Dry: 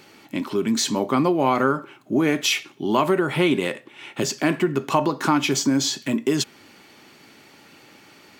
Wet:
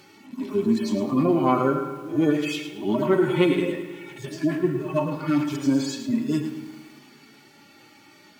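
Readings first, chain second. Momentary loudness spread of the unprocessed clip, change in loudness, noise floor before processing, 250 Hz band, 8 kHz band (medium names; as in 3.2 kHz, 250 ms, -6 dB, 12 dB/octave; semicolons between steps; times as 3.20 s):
9 LU, -1.5 dB, -51 dBFS, 0.0 dB, -14.5 dB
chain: harmonic-percussive separation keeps harmonic; pre-echo 126 ms -17 dB; spring tank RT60 1.9 s, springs 35/54 ms, chirp 35 ms, DRR 11 dB; bit-crushed delay 108 ms, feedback 35%, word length 8-bit, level -9.5 dB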